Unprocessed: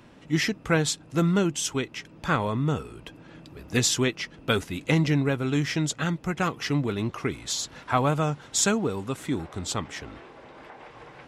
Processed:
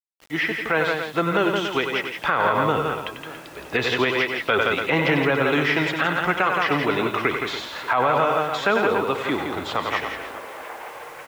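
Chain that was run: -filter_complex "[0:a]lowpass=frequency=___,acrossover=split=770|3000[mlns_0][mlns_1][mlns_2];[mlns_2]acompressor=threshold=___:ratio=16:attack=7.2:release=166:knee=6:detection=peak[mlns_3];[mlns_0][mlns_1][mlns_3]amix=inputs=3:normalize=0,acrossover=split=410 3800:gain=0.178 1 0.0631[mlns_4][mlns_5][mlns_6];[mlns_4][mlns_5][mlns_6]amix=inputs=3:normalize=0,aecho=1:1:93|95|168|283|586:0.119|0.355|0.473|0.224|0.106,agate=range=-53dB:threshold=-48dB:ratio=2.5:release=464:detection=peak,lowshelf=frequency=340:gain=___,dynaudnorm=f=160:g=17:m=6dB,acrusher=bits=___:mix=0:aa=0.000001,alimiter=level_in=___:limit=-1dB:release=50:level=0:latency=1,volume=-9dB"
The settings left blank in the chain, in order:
8800, -40dB, -3.5, 8, 16dB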